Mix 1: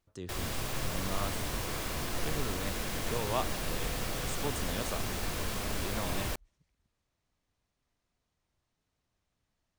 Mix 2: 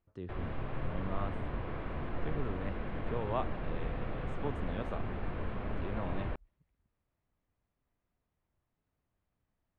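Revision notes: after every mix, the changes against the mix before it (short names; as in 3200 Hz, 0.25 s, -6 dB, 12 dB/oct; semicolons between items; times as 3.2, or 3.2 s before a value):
background: add air absorption 320 m; master: add air absorption 490 m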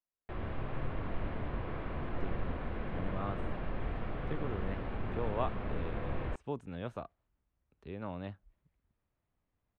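speech: entry +2.05 s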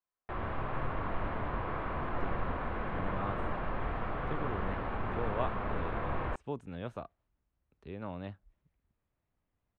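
background: add bell 1100 Hz +9.5 dB 1.6 oct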